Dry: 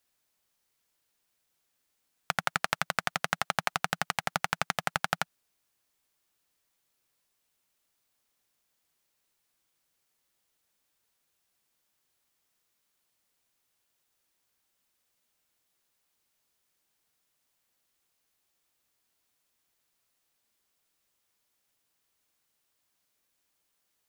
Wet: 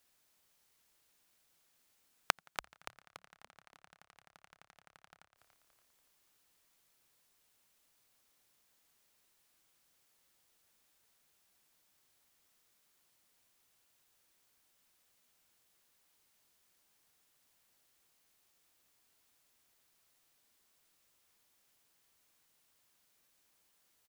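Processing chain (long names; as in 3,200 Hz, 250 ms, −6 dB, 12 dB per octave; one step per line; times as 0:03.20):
gate with flip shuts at −23 dBFS, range −40 dB
echo with shifted repeats 286 ms, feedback 46%, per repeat −63 Hz, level −9 dB
level +3 dB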